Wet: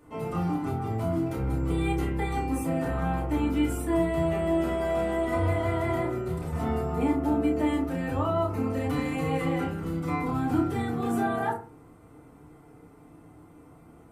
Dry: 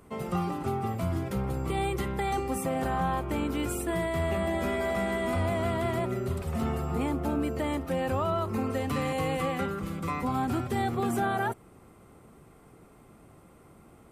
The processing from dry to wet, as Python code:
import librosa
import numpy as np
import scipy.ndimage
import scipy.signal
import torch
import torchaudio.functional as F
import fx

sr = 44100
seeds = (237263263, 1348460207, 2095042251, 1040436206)

y = fx.doubler(x, sr, ms=30.0, db=-5.5)
y = fx.rev_fdn(y, sr, rt60_s=0.37, lf_ratio=1.25, hf_ratio=0.35, size_ms=20.0, drr_db=-5.0)
y = y * librosa.db_to_amplitude(-7.0)